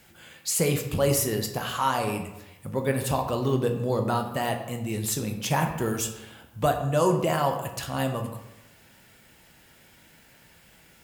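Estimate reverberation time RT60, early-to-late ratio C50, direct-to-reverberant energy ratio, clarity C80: 0.95 s, 8.0 dB, 4.0 dB, 9.5 dB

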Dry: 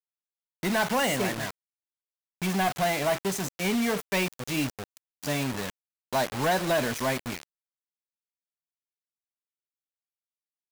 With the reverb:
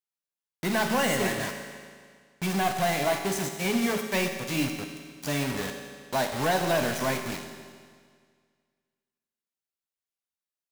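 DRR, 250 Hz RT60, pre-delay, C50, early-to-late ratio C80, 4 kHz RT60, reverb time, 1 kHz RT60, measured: 4.0 dB, 1.9 s, 5 ms, 6.0 dB, 7.0 dB, 1.8 s, 1.9 s, 1.9 s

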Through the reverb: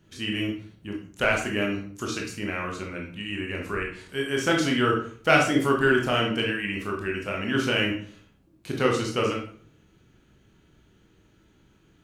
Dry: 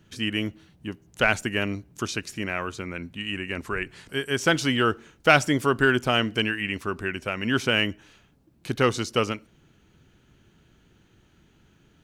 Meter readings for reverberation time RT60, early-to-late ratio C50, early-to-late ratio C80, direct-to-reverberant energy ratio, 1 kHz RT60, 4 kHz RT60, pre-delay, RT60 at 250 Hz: 0.50 s, 5.0 dB, 9.5 dB, −1.0 dB, 0.50 s, 0.35 s, 19 ms, 0.60 s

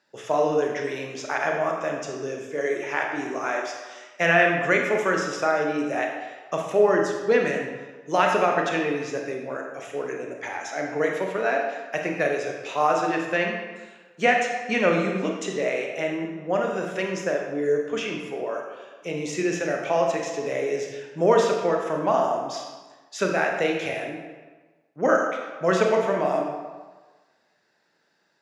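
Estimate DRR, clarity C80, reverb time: 1.0 dB, 5.0 dB, 1.3 s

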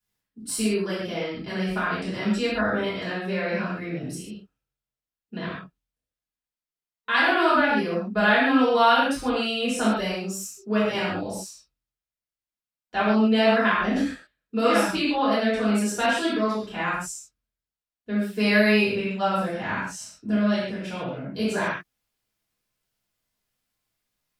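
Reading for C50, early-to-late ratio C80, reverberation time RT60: −0.5 dB, 3.0 dB, non-exponential decay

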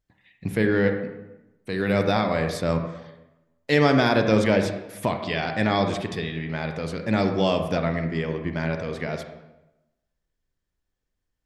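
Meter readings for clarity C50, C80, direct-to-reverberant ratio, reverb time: 6.5 dB, 9.0 dB, 5.5 dB, 0.95 s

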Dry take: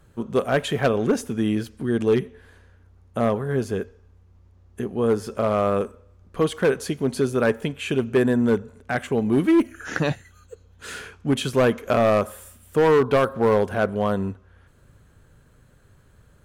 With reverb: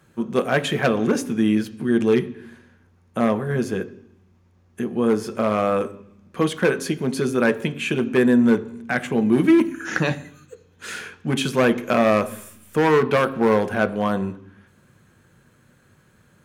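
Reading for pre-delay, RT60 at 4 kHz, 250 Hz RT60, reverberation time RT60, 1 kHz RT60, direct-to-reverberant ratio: 3 ms, 1.1 s, 0.95 s, 0.70 s, 0.70 s, 11.0 dB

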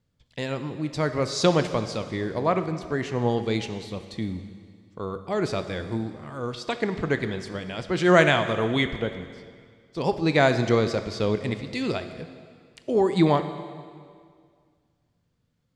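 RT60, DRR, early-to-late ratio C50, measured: 2.0 s, 9.0 dB, 10.0 dB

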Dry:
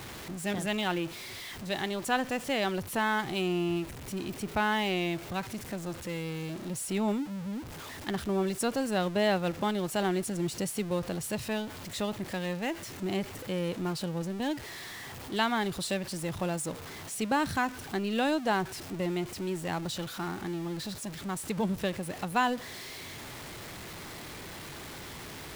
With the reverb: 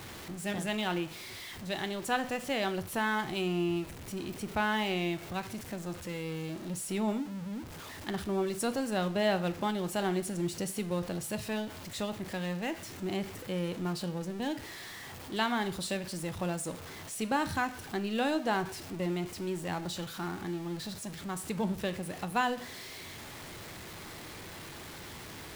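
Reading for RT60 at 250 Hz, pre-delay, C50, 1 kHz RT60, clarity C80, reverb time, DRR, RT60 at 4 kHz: 0.55 s, 5 ms, 16.0 dB, 0.50 s, 19.5 dB, 0.50 s, 10.5 dB, 0.45 s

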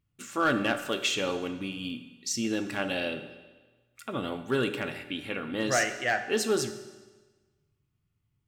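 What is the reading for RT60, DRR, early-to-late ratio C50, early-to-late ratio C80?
1.3 s, 8.5 dB, 10.5 dB, 12.0 dB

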